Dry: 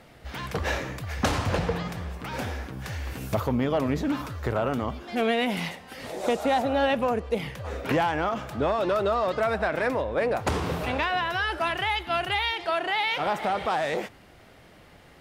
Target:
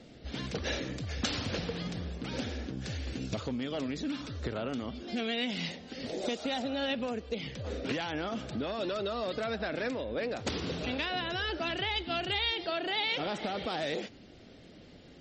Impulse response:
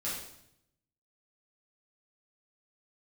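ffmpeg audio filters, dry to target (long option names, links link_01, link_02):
-filter_complex "[0:a]equalizer=frequency=250:width_type=o:width=1:gain=8,equalizer=frequency=500:width_type=o:width=1:gain=3,equalizer=frequency=1000:width_type=o:width=1:gain=-10,equalizer=frequency=2000:width_type=o:width=1:gain=-4,equalizer=frequency=4000:width_type=o:width=1:gain=5,acrossover=split=990[link_01][link_02];[link_01]acompressor=threshold=-30dB:ratio=8[link_03];[link_03][link_02]amix=inputs=2:normalize=0,volume=-2.5dB" -ar 48000 -c:a libmp3lame -b:a 32k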